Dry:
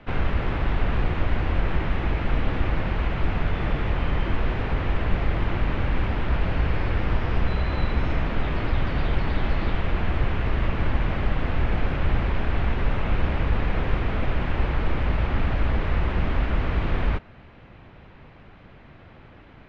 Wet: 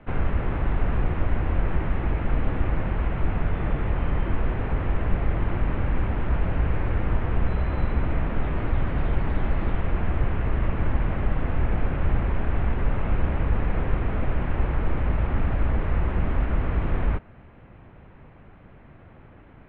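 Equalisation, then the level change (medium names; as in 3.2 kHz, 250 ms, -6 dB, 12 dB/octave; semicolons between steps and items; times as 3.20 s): distance through air 490 m; 0.0 dB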